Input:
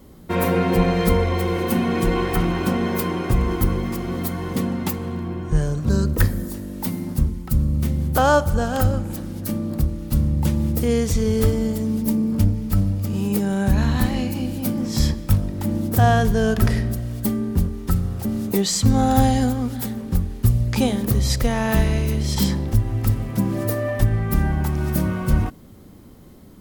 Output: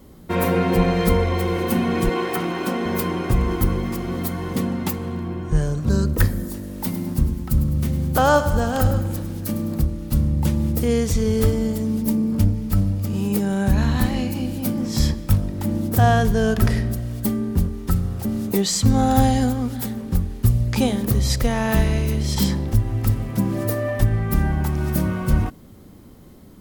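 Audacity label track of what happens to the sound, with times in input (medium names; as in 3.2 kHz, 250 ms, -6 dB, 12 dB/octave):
2.090000	2.860000	high-pass 240 Hz
6.530000	9.830000	bit-crushed delay 103 ms, feedback 55%, word length 7-bit, level -11.5 dB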